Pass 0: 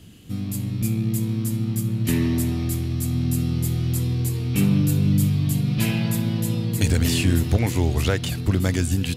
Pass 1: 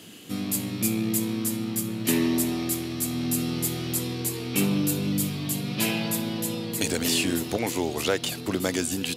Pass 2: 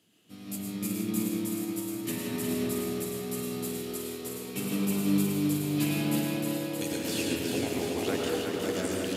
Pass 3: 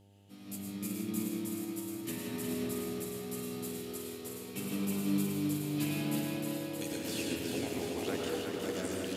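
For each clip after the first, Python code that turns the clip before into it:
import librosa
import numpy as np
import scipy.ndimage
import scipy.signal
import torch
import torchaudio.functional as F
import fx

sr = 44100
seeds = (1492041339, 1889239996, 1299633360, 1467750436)

y1 = scipy.signal.sosfilt(scipy.signal.butter(2, 320.0, 'highpass', fs=sr, output='sos'), x)
y1 = fx.dynamic_eq(y1, sr, hz=1800.0, q=1.4, threshold_db=-44.0, ratio=4.0, max_db=-4)
y1 = fx.rider(y1, sr, range_db=5, speed_s=2.0)
y1 = y1 * 10.0 ** (3.0 / 20.0)
y2 = fx.echo_feedback(y1, sr, ms=360, feedback_pct=60, wet_db=-4.5)
y2 = fx.rev_freeverb(y2, sr, rt60_s=2.9, hf_ratio=0.25, predelay_ms=70, drr_db=-3.0)
y2 = fx.upward_expand(y2, sr, threshold_db=-41.0, expansion=1.5)
y2 = y2 * 10.0 ** (-8.5 / 20.0)
y3 = fx.dmg_buzz(y2, sr, base_hz=100.0, harmonics=9, level_db=-56.0, tilt_db=-6, odd_only=False)
y3 = y3 * 10.0 ** (-5.5 / 20.0)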